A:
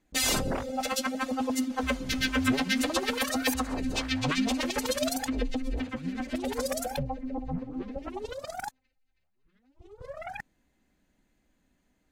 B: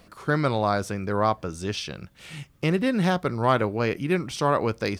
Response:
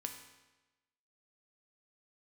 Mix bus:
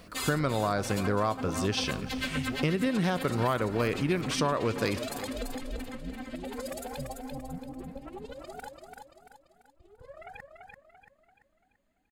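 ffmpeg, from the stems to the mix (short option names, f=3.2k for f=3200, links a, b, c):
-filter_complex "[0:a]equalizer=f=5.8k:t=o:w=0.2:g=-11,volume=-7dB,asplit=2[a][b];[b]volume=-4.5dB[c];[1:a]bandreject=f=820:w=13,volume=0.5dB,asplit=3[d][e][f];[e]volume=-9.5dB[g];[f]volume=-17dB[h];[2:a]atrim=start_sample=2205[i];[g][i]afir=irnorm=-1:irlink=0[j];[c][h]amix=inputs=2:normalize=0,aecho=0:1:339|678|1017|1356|1695|2034:1|0.43|0.185|0.0795|0.0342|0.0147[k];[a][d][j][k]amix=inputs=4:normalize=0,acompressor=threshold=-24dB:ratio=6"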